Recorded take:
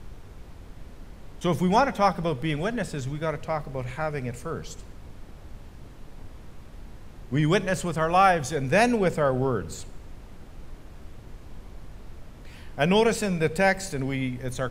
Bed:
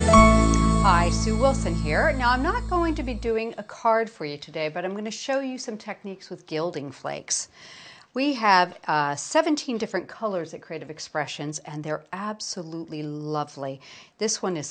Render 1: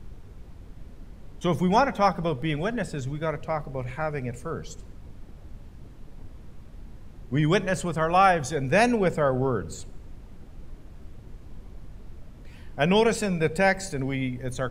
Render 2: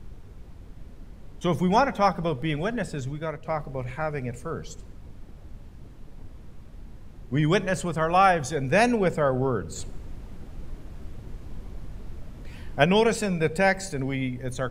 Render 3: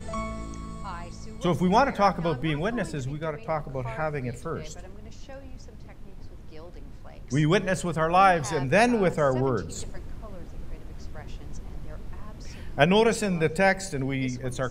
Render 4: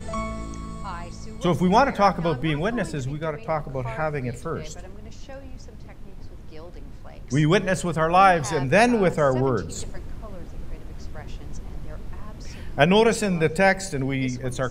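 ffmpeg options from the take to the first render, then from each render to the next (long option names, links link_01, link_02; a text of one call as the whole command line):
ffmpeg -i in.wav -af "afftdn=noise_reduction=6:noise_floor=-45" out.wav
ffmpeg -i in.wav -filter_complex "[0:a]asplit=4[link_01][link_02][link_03][link_04];[link_01]atrim=end=3.45,asetpts=PTS-STARTPTS,afade=type=out:start_time=3.02:duration=0.43:silence=0.501187[link_05];[link_02]atrim=start=3.45:end=9.762,asetpts=PTS-STARTPTS,afade=type=in:duration=0.004:curve=hsin:silence=0.501187[link_06];[link_03]atrim=start=9.758:end=12.842,asetpts=PTS-STARTPTS,volume=4.5dB[link_07];[link_04]atrim=start=12.838[link_08];[link_05][link_06]concat=n=2:v=0:a=1[link_09];[link_09][link_07]acrossfade=duration=0.004:curve1=hsin:curve2=hsin[link_10];[link_10][link_08]acrossfade=duration=0.004:curve1=hsin:curve2=hsin" out.wav
ffmpeg -i in.wav -i bed.wav -filter_complex "[1:a]volume=-19dB[link_01];[0:a][link_01]amix=inputs=2:normalize=0" out.wav
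ffmpeg -i in.wav -af "volume=3dB,alimiter=limit=-1dB:level=0:latency=1" out.wav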